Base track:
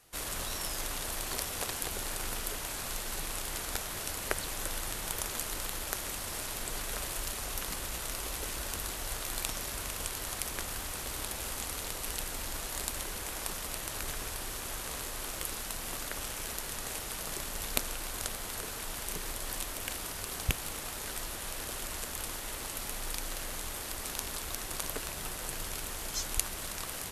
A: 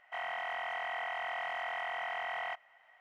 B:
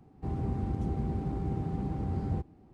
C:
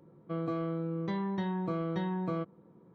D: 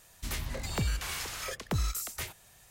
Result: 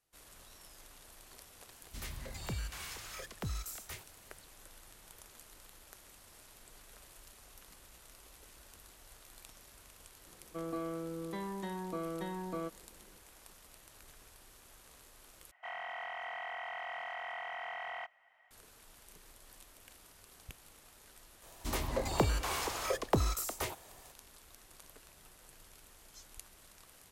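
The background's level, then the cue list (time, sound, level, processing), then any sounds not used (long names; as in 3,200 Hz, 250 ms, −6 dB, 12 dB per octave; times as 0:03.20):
base track −20 dB
0:01.71: mix in D −8.5 dB
0:10.25: mix in C −3.5 dB + high-pass filter 250 Hz
0:15.51: overwrite with A −4.5 dB
0:21.42: mix in D −2 dB + flat-topped bell 550 Hz +10 dB 2.4 octaves
not used: B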